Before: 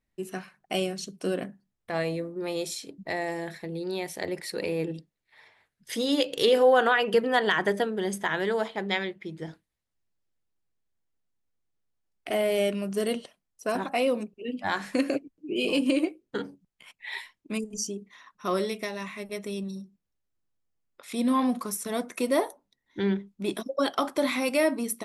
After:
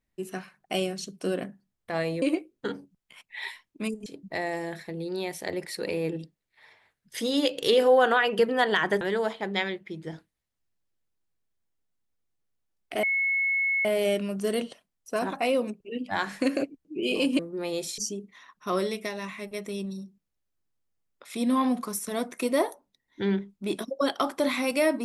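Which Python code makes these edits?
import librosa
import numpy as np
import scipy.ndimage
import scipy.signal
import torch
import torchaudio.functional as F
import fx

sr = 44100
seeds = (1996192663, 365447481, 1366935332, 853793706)

y = fx.edit(x, sr, fx.swap(start_s=2.22, length_s=0.59, other_s=15.92, other_length_s=1.84),
    fx.cut(start_s=7.76, length_s=0.6),
    fx.insert_tone(at_s=12.38, length_s=0.82, hz=2190.0, db=-22.5), tone=tone)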